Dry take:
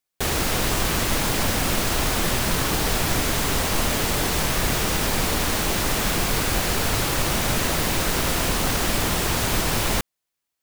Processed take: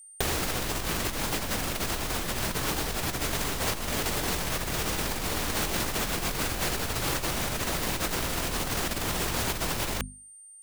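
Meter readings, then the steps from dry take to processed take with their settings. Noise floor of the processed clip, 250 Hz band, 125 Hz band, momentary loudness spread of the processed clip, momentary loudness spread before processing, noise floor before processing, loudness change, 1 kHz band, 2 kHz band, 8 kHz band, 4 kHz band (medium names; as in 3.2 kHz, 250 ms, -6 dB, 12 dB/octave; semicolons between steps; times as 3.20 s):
-50 dBFS, -7.5 dB, -8.0 dB, 2 LU, 0 LU, -82 dBFS, -7.0 dB, -7.0 dB, -7.0 dB, -6.5 dB, -7.0 dB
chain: hum notches 50/100/150/200/250 Hz; whistle 8.8 kHz -50 dBFS; compressor with a negative ratio -26 dBFS, ratio -0.5; trim -2 dB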